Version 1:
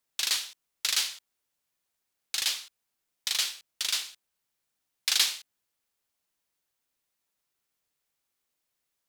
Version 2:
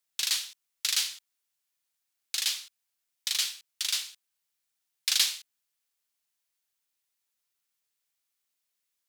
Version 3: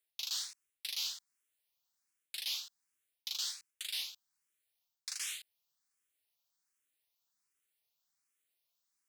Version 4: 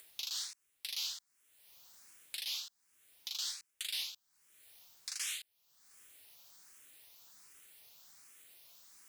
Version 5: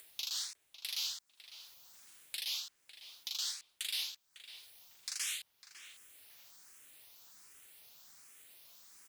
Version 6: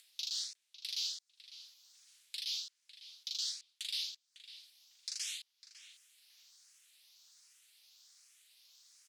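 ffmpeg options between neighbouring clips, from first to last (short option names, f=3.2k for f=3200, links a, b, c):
-af "tiltshelf=f=1.2k:g=-5.5,volume=-5dB"
-filter_complex "[0:a]areverse,acompressor=threshold=-34dB:ratio=8,areverse,asplit=2[a][b];[b]afreqshift=1.3[c];[a][c]amix=inputs=2:normalize=1,volume=1dB"
-af "alimiter=level_in=6.5dB:limit=-24dB:level=0:latency=1:release=160,volume=-6.5dB,acompressor=mode=upward:threshold=-45dB:ratio=2.5,volume=3dB"
-filter_complex "[0:a]asplit=2[a][b];[b]adelay=552,lowpass=f=2.1k:p=1,volume=-9dB,asplit=2[c][d];[d]adelay=552,lowpass=f=2.1k:p=1,volume=0.3,asplit=2[e][f];[f]adelay=552,lowpass=f=2.1k:p=1,volume=0.3[g];[a][c][e][g]amix=inputs=4:normalize=0,volume=1dB"
-af "bandpass=f=4.7k:t=q:w=1.4:csg=0,volume=1.5dB"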